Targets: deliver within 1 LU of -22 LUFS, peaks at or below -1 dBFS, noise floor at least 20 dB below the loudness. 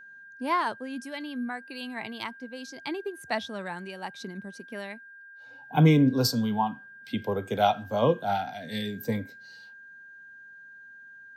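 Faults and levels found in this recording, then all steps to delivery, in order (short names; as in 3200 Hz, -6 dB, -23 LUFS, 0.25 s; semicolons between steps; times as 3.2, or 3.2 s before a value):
steady tone 1600 Hz; tone level -46 dBFS; loudness -28.5 LUFS; peak -9.5 dBFS; loudness target -22.0 LUFS
-> notch 1600 Hz, Q 30; gain +6.5 dB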